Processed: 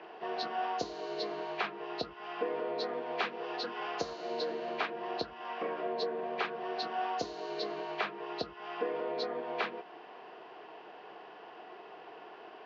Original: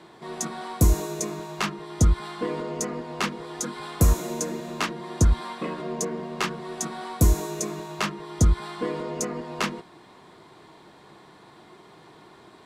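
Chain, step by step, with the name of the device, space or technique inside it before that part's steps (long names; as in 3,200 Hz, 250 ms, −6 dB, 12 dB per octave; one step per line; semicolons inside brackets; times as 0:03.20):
hearing aid with frequency lowering (hearing-aid frequency compression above 1,700 Hz 1.5 to 1; downward compressor 2.5 to 1, threshold −34 dBFS, peak gain reduction 13 dB; loudspeaker in its box 360–5,000 Hz, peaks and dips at 450 Hz +8 dB, 720 Hz +10 dB, 1,600 Hz +5 dB, 2,600 Hz +5 dB)
0:02.86–0:03.57: high-shelf EQ 4,000 Hz +5.5 dB
level −2.5 dB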